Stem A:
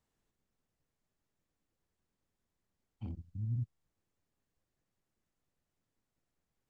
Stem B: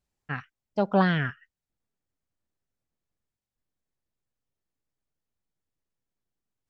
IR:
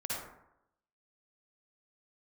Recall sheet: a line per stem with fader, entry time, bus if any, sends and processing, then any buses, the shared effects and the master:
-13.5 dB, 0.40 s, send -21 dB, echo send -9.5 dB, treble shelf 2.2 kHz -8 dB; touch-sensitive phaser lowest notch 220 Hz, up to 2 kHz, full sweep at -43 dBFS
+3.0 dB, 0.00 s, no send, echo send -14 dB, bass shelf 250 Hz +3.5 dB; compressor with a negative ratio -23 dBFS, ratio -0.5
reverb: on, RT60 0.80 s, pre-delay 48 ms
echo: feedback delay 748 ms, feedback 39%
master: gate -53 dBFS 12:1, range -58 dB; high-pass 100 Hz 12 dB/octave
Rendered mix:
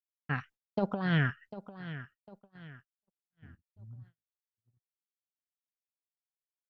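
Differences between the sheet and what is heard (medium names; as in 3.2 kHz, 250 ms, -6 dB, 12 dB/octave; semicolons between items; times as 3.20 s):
stem B +3.0 dB -> -4.0 dB; master: missing high-pass 100 Hz 12 dB/octave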